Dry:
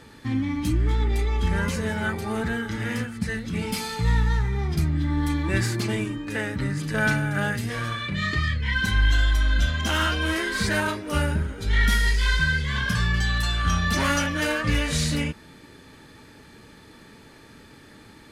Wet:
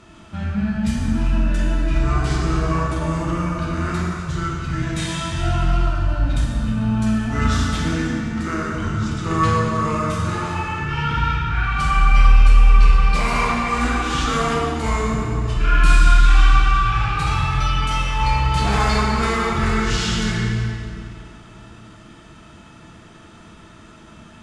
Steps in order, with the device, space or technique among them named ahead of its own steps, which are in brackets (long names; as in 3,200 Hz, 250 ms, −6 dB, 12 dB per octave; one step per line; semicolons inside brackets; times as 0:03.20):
slowed and reverbed (speed change −25%; convolution reverb RT60 2.5 s, pre-delay 16 ms, DRR −2.5 dB)